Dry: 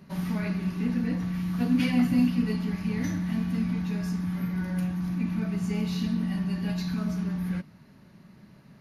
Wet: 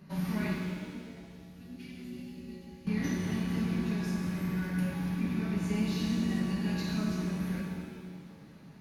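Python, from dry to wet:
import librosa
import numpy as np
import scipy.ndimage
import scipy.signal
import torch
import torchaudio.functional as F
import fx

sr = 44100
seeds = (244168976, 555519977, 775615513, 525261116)

y = fx.tone_stack(x, sr, knobs='6-0-2', at=(0.55, 2.87))
y = fx.rev_shimmer(y, sr, seeds[0], rt60_s=1.8, semitones=7, shimmer_db=-8, drr_db=-1.0)
y = y * 10.0 ** (-4.0 / 20.0)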